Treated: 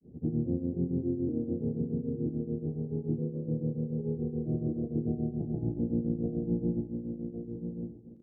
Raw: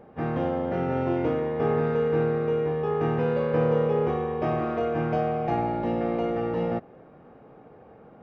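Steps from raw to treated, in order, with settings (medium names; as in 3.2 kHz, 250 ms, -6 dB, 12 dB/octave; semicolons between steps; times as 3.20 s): gain riding 0.5 s; inverse Chebyshev low-pass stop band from 2 kHz, stop band 80 dB; doubling 35 ms -11.5 dB; feedback delay 1069 ms, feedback 18%, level -6.5 dB; granulator 206 ms, grains 7 per s, pitch spread up and down by 0 st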